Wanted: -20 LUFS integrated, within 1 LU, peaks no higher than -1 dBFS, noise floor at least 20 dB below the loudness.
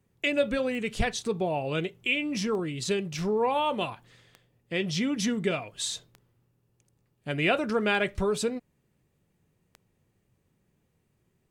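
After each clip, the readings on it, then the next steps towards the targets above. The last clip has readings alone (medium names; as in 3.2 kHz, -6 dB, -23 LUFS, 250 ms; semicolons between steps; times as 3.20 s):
clicks found 6; loudness -28.5 LUFS; peak level -12.5 dBFS; loudness target -20.0 LUFS
-> de-click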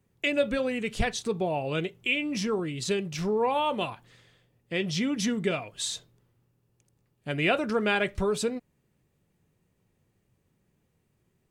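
clicks found 0; loudness -28.5 LUFS; peak level -12.5 dBFS; loudness target -20.0 LUFS
-> trim +8.5 dB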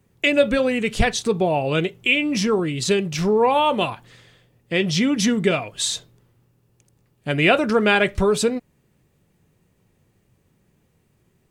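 loudness -20.0 LUFS; peak level -4.0 dBFS; noise floor -65 dBFS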